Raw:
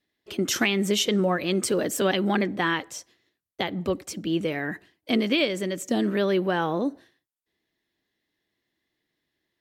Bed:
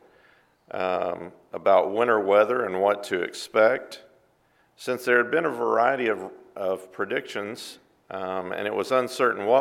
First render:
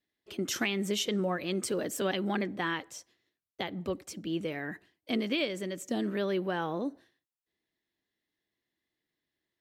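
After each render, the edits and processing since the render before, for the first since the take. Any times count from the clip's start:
level −7.5 dB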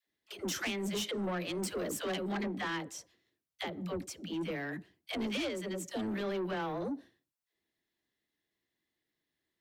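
all-pass dispersion lows, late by 84 ms, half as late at 420 Hz
soft clipping −31 dBFS, distortion −11 dB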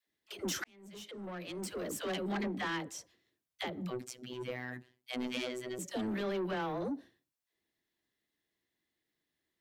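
0:00.64–0:02.31: fade in
0:03.90–0:05.79: phases set to zero 125 Hz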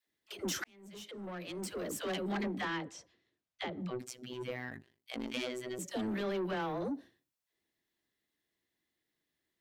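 0:02.65–0:04.00: high-frequency loss of the air 85 metres
0:04.69–0:05.34: ring modulation 25 Hz

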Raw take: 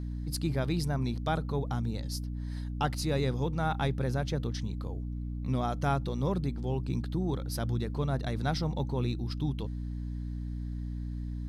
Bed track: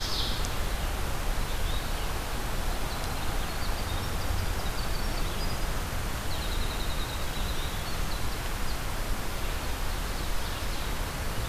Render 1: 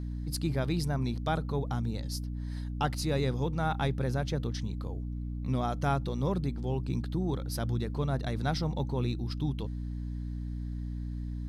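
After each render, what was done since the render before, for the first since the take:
no processing that can be heard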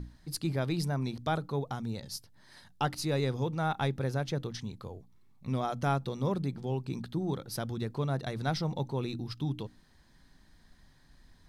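mains-hum notches 60/120/180/240/300 Hz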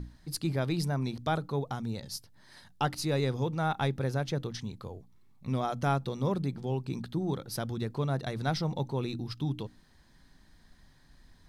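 level +1 dB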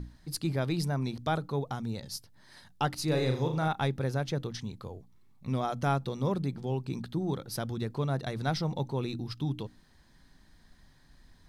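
0:03.04–0:03.68: flutter between parallel walls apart 6.6 metres, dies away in 0.43 s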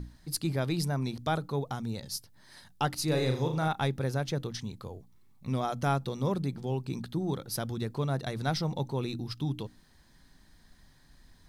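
high-shelf EQ 6,700 Hz +6 dB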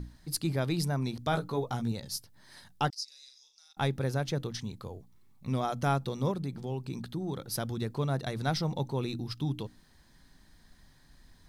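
0:01.30–0:01.92: double-tracking delay 17 ms −4.5 dB
0:02.90–0:03.77: four-pole ladder band-pass 5,500 Hz, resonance 80%
0:06.31–0:07.37: downward compressor 1.5 to 1, threshold −36 dBFS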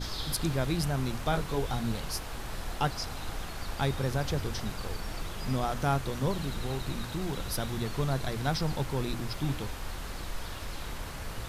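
mix in bed track −6.5 dB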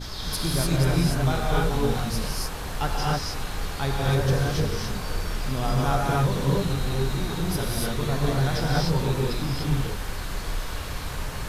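reverb whose tail is shaped and stops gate 320 ms rising, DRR −5 dB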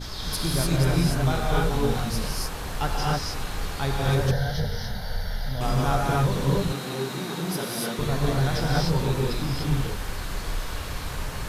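0:04.31–0:05.61: phaser with its sweep stopped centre 1,700 Hz, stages 8
0:06.72–0:07.99: high-pass filter 160 Hz 24 dB per octave

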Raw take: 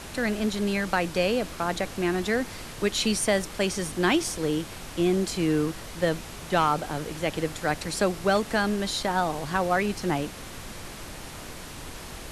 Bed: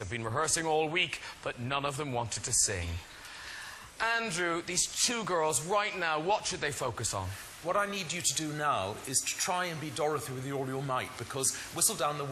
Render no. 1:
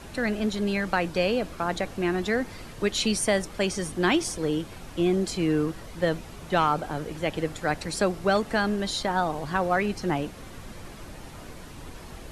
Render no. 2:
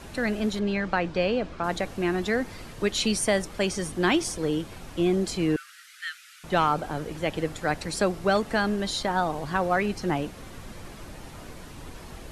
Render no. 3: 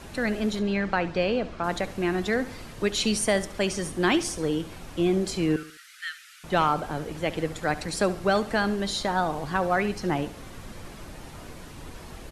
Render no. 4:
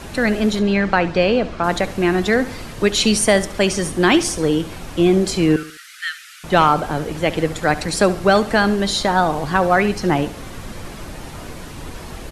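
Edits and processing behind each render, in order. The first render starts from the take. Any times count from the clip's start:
broadband denoise 8 dB, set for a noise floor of −41 dBFS
0:00.59–0:01.64: high-frequency loss of the air 110 metres; 0:05.56–0:06.44: Butterworth high-pass 1,300 Hz 96 dB per octave
repeating echo 70 ms, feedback 39%, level −16 dB
level +9 dB; brickwall limiter −1 dBFS, peak gain reduction 1.5 dB

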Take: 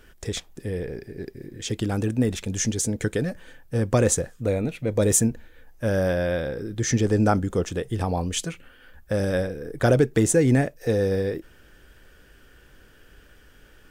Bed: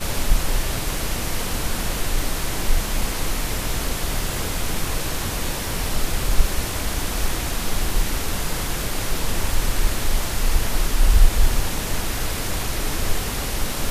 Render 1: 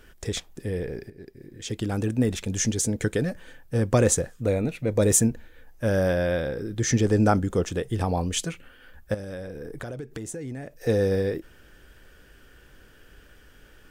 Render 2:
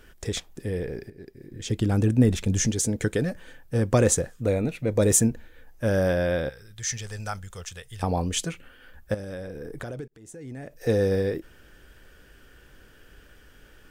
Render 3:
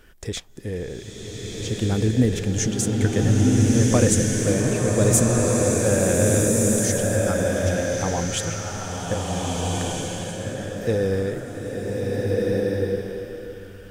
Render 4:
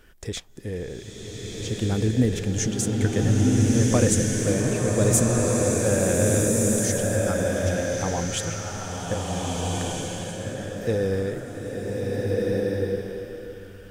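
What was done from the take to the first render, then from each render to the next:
0:01.10–0:02.67: fade in equal-power, from −12 dB; 0:04.54–0:05.13: notch filter 3,200 Hz; 0:09.14–0:10.82: downward compressor 10 to 1, threshold −32 dBFS
0:01.51–0:02.67: low-shelf EQ 250 Hz +7.5 dB; 0:06.49–0:08.03: guitar amp tone stack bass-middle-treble 10-0-10; 0:10.08–0:10.72: fade in
slow-attack reverb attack 1,600 ms, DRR −3.5 dB
level −2 dB

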